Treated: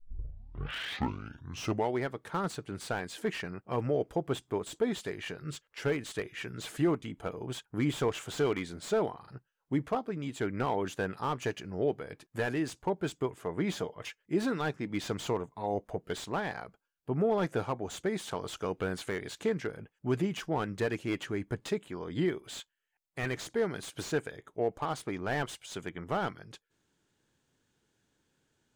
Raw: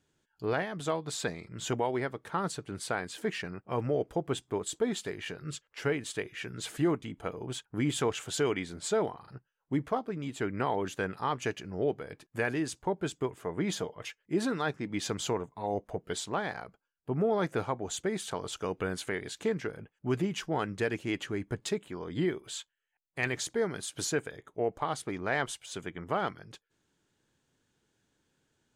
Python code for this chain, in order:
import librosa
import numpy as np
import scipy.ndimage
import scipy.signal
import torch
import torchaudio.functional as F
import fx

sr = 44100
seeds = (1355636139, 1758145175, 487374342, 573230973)

y = fx.tape_start_head(x, sr, length_s=1.97)
y = fx.slew_limit(y, sr, full_power_hz=49.0)